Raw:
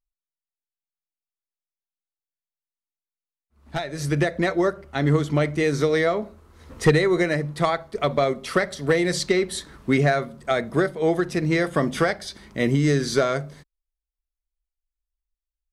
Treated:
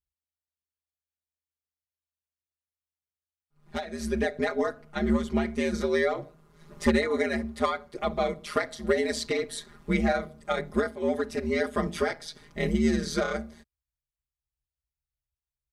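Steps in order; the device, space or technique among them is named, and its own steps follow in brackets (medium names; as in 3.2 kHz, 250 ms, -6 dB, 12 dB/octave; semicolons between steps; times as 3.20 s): ring-modulated robot voice (ring modulator 79 Hz; comb 4.9 ms, depth 99%); trim -6 dB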